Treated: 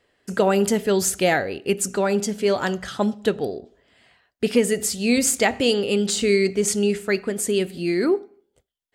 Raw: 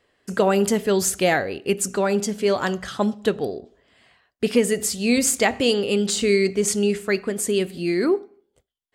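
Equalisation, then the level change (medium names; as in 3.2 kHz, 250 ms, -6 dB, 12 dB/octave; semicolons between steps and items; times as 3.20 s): band-stop 1.1 kHz, Q 13; 0.0 dB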